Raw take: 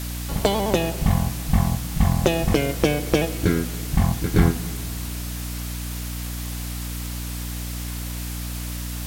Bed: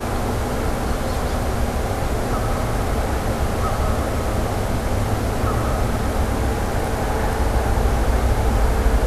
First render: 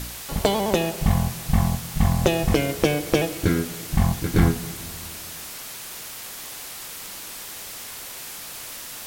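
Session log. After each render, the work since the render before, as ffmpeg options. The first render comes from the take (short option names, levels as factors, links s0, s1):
-af "bandreject=f=60:t=h:w=4,bandreject=f=120:t=h:w=4,bandreject=f=180:t=h:w=4,bandreject=f=240:t=h:w=4,bandreject=f=300:t=h:w=4,bandreject=f=360:t=h:w=4,bandreject=f=420:t=h:w=4"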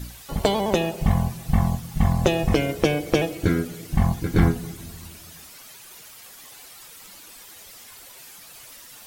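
-af "afftdn=nr=11:nf=-37"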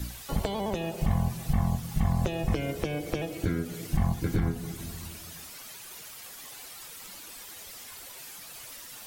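-filter_complex "[0:a]alimiter=limit=0.178:level=0:latency=1:release=392,acrossover=split=160[s0][s1];[s1]acompressor=threshold=0.0398:ratio=6[s2];[s0][s2]amix=inputs=2:normalize=0"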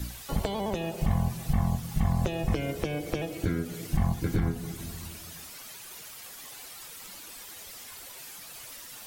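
-af anull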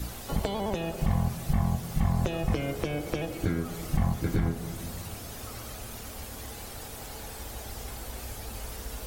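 -filter_complex "[1:a]volume=0.0794[s0];[0:a][s0]amix=inputs=2:normalize=0"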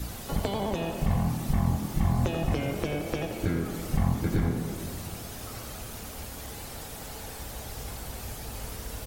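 -filter_complex "[0:a]asplit=9[s0][s1][s2][s3][s4][s5][s6][s7][s8];[s1]adelay=86,afreqshift=39,volume=0.335[s9];[s2]adelay=172,afreqshift=78,volume=0.211[s10];[s3]adelay=258,afreqshift=117,volume=0.133[s11];[s4]adelay=344,afreqshift=156,volume=0.0841[s12];[s5]adelay=430,afreqshift=195,volume=0.0525[s13];[s6]adelay=516,afreqshift=234,volume=0.0331[s14];[s7]adelay=602,afreqshift=273,volume=0.0209[s15];[s8]adelay=688,afreqshift=312,volume=0.0132[s16];[s0][s9][s10][s11][s12][s13][s14][s15][s16]amix=inputs=9:normalize=0"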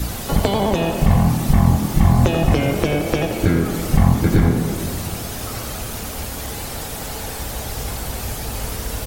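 -af "volume=3.76"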